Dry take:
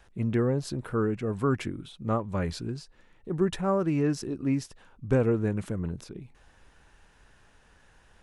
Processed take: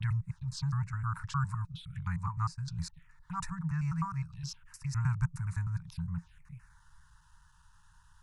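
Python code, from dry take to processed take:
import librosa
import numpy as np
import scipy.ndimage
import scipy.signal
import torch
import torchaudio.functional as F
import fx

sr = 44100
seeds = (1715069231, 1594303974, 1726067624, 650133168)

y = fx.block_reorder(x, sr, ms=103.0, group=4)
y = scipy.signal.sosfilt(scipy.signal.cheby1(5, 1.0, [170.0, 900.0], 'bandstop', fs=sr, output='sos'), y)
y = fx.env_phaser(y, sr, low_hz=330.0, high_hz=3200.0, full_db=-32.5)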